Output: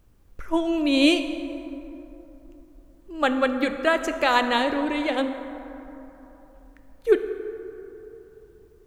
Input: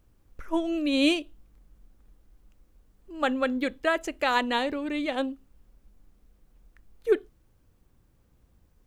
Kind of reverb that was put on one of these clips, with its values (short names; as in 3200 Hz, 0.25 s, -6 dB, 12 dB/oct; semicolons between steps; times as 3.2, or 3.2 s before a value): plate-style reverb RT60 3.4 s, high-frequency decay 0.4×, DRR 7.5 dB; gain +4 dB